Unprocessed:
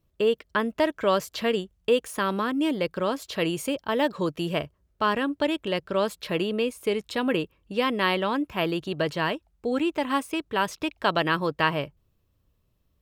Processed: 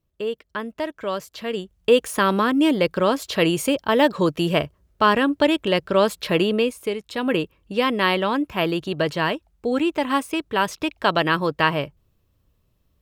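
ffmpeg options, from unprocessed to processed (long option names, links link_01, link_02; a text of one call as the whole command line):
ffmpeg -i in.wav -af "volume=14.5dB,afade=type=in:start_time=1.46:duration=0.55:silence=0.281838,afade=type=out:start_time=6.49:duration=0.53:silence=0.298538,afade=type=in:start_time=7.02:duration=0.34:silence=0.421697" out.wav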